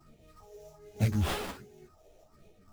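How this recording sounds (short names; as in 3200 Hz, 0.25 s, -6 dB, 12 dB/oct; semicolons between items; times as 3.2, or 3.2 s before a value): phasing stages 4, 1.3 Hz, lowest notch 200–1200 Hz; aliases and images of a low sample rate 6500 Hz, jitter 20%; tremolo triangle 3.4 Hz, depth 35%; a shimmering, thickened sound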